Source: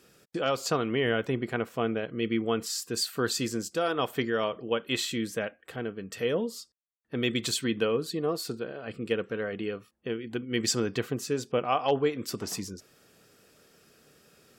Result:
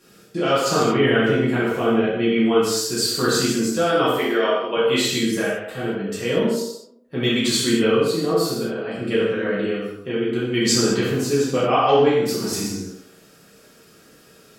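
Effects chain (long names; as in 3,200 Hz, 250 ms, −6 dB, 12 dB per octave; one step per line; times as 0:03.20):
0:04.13–0:04.77: high-pass filter 320 Hz 12 dB per octave
tape delay 63 ms, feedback 63%, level −5.5 dB, low-pass 1,600 Hz
reverb whose tail is shaped and stops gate 260 ms falling, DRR −8 dB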